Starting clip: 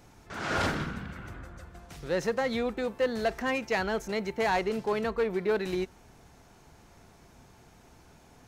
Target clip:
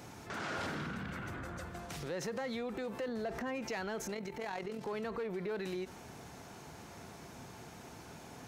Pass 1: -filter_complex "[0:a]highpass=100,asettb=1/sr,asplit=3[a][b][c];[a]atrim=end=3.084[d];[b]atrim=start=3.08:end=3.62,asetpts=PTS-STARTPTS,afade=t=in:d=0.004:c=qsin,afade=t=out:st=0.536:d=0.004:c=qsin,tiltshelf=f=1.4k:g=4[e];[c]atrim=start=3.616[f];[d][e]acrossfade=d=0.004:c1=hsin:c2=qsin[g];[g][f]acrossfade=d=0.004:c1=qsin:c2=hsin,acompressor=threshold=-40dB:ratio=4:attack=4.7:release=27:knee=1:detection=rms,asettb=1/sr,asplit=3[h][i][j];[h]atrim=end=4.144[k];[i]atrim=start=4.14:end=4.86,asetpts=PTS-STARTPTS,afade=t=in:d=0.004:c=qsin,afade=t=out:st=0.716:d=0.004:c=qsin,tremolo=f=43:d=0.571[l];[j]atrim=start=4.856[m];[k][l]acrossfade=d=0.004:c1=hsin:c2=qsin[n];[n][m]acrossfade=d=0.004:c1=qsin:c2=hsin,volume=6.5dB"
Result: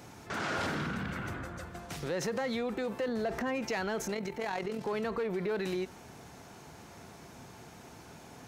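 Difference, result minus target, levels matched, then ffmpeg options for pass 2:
compressor: peak gain reduction -5 dB
-filter_complex "[0:a]highpass=100,asettb=1/sr,asplit=3[a][b][c];[a]atrim=end=3.084[d];[b]atrim=start=3.08:end=3.62,asetpts=PTS-STARTPTS,afade=t=in:d=0.004:c=qsin,afade=t=out:st=0.536:d=0.004:c=qsin,tiltshelf=f=1.4k:g=4[e];[c]atrim=start=3.616[f];[d][e]acrossfade=d=0.004:c1=hsin:c2=qsin[g];[g][f]acrossfade=d=0.004:c1=qsin:c2=hsin,acompressor=threshold=-47dB:ratio=4:attack=4.7:release=27:knee=1:detection=rms,asettb=1/sr,asplit=3[h][i][j];[h]atrim=end=4.144[k];[i]atrim=start=4.14:end=4.86,asetpts=PTS-STARTPTS,afade=t=in:d=0.004:c=qsin,afade=t=out:st=0.716:d=0.004:c=qsin,tremolo=f=43:d=0.571[l];[j]atrim=start=4.856[m];[k][l]acrossfade=d=0.004:c1=hsin:c2=qsin[n];[n][m]acrossfade=d=0.004:c1=qsin:c2=hsin,volume=6.5dB"

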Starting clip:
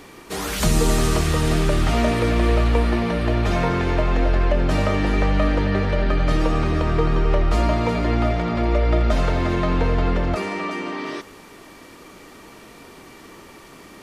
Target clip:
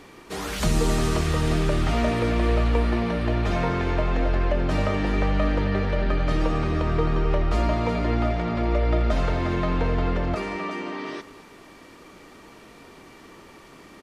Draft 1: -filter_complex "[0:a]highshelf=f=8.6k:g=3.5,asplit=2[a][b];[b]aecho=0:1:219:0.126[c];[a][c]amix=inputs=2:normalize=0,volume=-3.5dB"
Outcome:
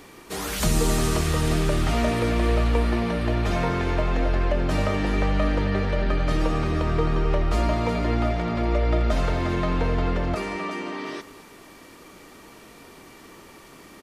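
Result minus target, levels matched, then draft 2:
8000 Hz band +4.5 dB
-filter_complex "[0:a]highshelf=f=8.6k:g=-8,asplit=2[a][b];[b]aecho=0:1:219:0.126[c];[a][c]amix=inputs=2:normalize=0,volume=-3.5dB"

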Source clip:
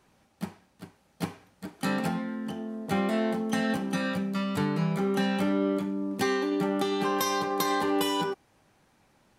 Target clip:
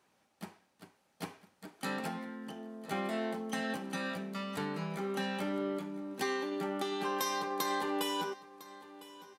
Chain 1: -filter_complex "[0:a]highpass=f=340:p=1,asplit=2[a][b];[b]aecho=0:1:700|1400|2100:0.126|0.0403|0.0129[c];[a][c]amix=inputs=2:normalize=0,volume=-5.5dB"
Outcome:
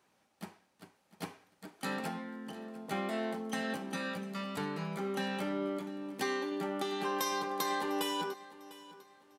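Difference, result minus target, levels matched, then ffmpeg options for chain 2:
echo 0.305 s early
-filter_complex "[0:a]highpass=f=340:p=1,asplit=2[a][b];[b]aecho=0:1:1005|2010|3015:0.126|0.0403|0.0129[c];[a][c]amix=inputs=2:normalize=0,volume=-5.5dB"

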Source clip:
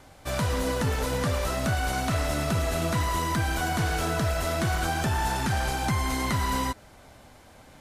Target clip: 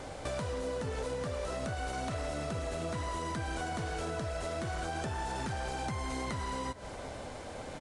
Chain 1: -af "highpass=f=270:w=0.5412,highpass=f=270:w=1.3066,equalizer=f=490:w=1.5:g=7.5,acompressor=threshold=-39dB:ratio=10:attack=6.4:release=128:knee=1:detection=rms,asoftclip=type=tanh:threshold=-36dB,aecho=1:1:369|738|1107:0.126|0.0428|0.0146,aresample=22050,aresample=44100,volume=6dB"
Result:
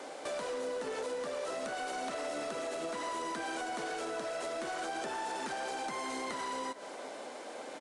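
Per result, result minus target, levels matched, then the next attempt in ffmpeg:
soft clip: distortion +20 dB; 250 Hz band -2.5 dB
-af "highpass=f=270:w=0.5412,highpass=f=270:w=1.3066,equalizer=f=490:w=1.5:g=7.5,acompressor=threshold=-39dB:ratio=10:attack=6.4:release=128:knee=1:detection=rms,asoftclip=type=tanh:threshold=-24.5dB,aecho=1:1:369|738|1107:0.126|0.0428|0.0146,aresample=22050,aresample=44100,volume=6dB"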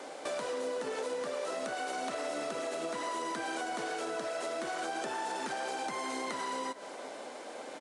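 250 Hz band -2.5 dB
-af "equalizer=f=490:w=1.5:g=7.5,acompressor=threshold=-39dB:ratio=10:attack=6.4:release=128:knee=1:detection=rms,asoftclip=type=tanh:threshold=-24.5dB,aecho=1:1:369|738|1107:0.126|0.0428|0.0146,aresample=22050,aresample=44100,volume=6dB"

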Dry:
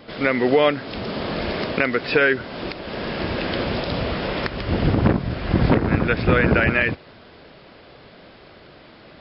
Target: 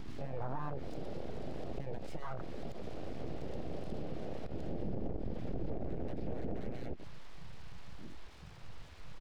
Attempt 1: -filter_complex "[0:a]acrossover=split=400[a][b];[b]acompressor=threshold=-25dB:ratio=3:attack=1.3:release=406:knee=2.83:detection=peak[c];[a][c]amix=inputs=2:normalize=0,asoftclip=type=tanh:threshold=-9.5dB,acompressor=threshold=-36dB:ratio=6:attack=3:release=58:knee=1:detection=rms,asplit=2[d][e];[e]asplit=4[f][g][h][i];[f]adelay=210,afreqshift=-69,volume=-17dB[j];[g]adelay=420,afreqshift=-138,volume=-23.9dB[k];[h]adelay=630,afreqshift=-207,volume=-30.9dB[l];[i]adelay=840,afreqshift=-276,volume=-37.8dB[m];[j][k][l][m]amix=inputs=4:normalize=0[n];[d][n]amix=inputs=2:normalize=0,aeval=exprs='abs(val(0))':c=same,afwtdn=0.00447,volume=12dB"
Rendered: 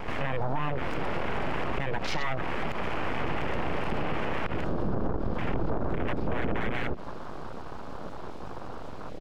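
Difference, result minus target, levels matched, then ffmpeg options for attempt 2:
compressor: peak gain reduction -9 dB
-filter_complex "[0:a]acrossover=split=400[a][b];[b]acompressor=threshold=-25dB:ratio=3:attack=1.3:release=406:knee=2.83:detection=peak[c];[a][c]amix=inputs=2:normalize=0,asoftclip=type=tanh:threshold=-9.5dB,acompressor=threshold=-46.5dB:ratio=6:attack=3:release=58:knee=1:detection=rms,asplit=2[d][e];[e]asplit=4[f][g][h][i];[f]adelay=210,afreqshift=-69,volume=-17dB[j];[g]adelay=420,afreqshift=-138,volume=-23.9dB[k];[h]adelay=630,afreqshift=-207,volume=-30.9dB[l];[i]adelay=840,afreqshift=-276,volume=-37.8dB[m];[j][k][l][m]amix=inputs=4:normalize=0[n];[d][n]amix=inputs=2:normalize=0,aeval=exprs='abs(val(0))':c=same,afwtdn=0.00447,volume=12dB"

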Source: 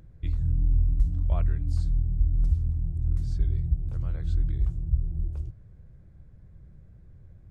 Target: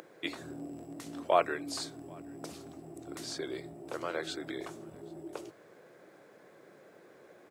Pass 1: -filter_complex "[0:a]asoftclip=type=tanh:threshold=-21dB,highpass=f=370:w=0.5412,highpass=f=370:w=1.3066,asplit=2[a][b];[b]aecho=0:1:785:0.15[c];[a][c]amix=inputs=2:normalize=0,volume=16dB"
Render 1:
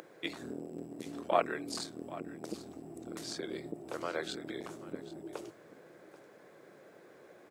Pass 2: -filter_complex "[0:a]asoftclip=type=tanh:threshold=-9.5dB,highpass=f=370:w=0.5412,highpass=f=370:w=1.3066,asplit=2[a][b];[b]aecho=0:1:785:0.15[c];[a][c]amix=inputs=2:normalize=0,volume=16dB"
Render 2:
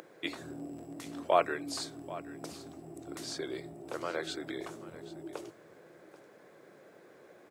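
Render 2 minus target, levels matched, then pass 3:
echo-to-direct +10.5 dB
-filter_complex "[0:a]asoftclip=type=tanh:threshold=-9.5dB,highpass=f=370:w=0.5412,highpass=f=370:w=1.3066,asplit=2[a][b];[b]aecho=0:1:785:0.0447[c];[a][c]amix=inputs=2:normalize=0,volume=16dB"

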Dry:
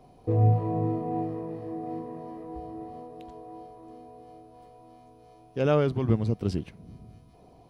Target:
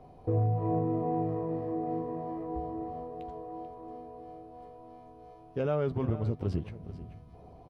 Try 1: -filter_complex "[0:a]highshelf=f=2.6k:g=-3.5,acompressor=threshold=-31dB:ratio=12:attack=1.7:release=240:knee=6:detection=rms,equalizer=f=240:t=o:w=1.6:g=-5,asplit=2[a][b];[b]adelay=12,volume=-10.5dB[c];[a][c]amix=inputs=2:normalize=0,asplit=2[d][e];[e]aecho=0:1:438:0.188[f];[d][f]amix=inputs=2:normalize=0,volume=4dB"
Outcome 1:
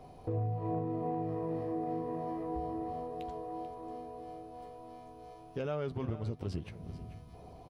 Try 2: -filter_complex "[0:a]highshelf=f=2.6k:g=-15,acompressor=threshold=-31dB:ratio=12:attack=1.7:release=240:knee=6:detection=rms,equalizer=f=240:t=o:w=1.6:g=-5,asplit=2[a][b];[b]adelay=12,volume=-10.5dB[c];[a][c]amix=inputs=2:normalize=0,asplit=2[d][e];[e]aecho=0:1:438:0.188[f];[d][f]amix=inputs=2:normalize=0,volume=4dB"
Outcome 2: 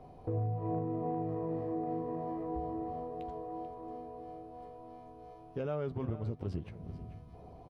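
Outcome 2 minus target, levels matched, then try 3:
compressor: peak gain reduction +6.5 dB
-filter_complex "[0:a]highshelf=f=2.6k:g=-15,acompressor=threshold=-24dB:ratio=12:attack=1.7:release=240:knee=6:detection=rms,equalizer=f=240:t=o:w=1.6:g=-5,asplit=2[a][b];[b]adelay=12,volume=-10.5dB[c];[a][c]amix=inputs=2:normalize=0,asplit=2[d][e];[e]aecho=0:1:438:0.188[f];[d][f]amix=inputs=2:normalize=0,volume=4dB"

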